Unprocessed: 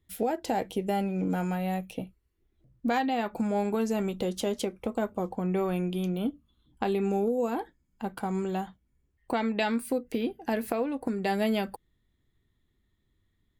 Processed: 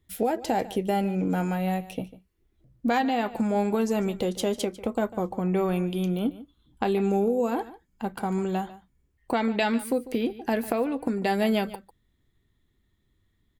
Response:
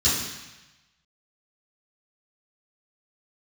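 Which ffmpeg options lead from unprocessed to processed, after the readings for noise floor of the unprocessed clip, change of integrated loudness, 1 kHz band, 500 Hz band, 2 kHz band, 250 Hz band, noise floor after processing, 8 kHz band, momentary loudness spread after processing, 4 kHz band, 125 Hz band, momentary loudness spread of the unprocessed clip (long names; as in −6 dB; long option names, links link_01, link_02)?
−74 dBFS, +3.0 dB, +3.0 dB, +3.0 dB, +3.0 dB, +3.0 dB, −71 dBFS, +3.0 dB, 8 LU, +3.0 dB, +3.0 dB, 8 LU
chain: -af "aecho=1:1:147:0.141,volume=3dB"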